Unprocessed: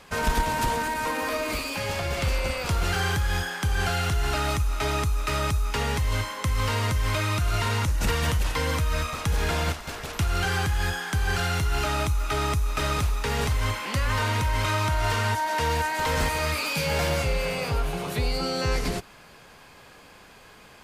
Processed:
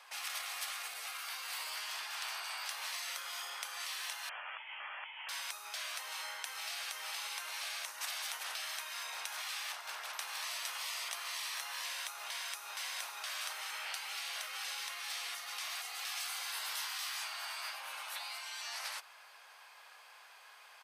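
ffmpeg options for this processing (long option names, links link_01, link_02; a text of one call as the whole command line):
ffmpeg -i in.wav -filter_complex "[0:a]asettb=1/sr,asplit=3[link_01][link_02][link_03];[link_01]atrim=end=4.294[link_04];[link_02]atrim=start=4.29:end=5.29,asetpts=PTS-STARTPTS,afade=type=in:duration=0.004:curve=qsin,afade=type=out:start_time=0.996:duration=0.004:curve=qsin,lowpass=frequency=2900:width_type=q:width=0.5098,lowpass=frequency=2900:width_type=q:width=0.6013,lowpass=frequency=2900:width_type=q:width=0.9,lowpass=frequency=2900:width_type=q:width=2.563,afreqshift=-3400[link_05];[link_03]atrim=start=5.286[link_06];[link_04][link_05]acrossfade=duration=0.004:curve1=hsin:curve2=qsin[link_07];[link_07][link_06]acrossfade=duration=0.004:curve1=qsin:curve2=hsin,asplit=2[link_08][link_09];[link_09]afade=type=in:start_time=9.82:duration=0.01,afade=type=out:start_time=10.62:duration=0.01,aecho=0:1:460|920|1380|1840|2300|2760|3220|3680|4140|4600|5060:0.841395|0.546907|0.355489|0.231068|0.150194|0.0976263|0.0634571|0.0412471|0.0268106|0.0174269|0.0113275[link_10];[link_08][link_10]amix=inputs=2:normalize=0,afftfilt=real='re*lt(hypot(re,im),0.0631)':imag='im*lt(hypot(re,im),0.0631)':win_size=1024:overlap=0.75,highpass=frequency=740:width=0.5412,highpass=frequency=740:width=1.3066,bandreject=frequency=7100:width=10,volume=-5.5dB" out.wav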